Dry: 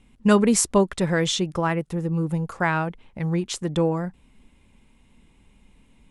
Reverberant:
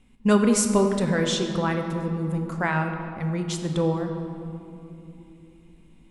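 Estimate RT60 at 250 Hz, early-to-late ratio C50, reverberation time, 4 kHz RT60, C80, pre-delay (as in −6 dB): 4.8 s, 6.0 dB, 3.0 s, 1.6 s, 7.0 dB, 4 ms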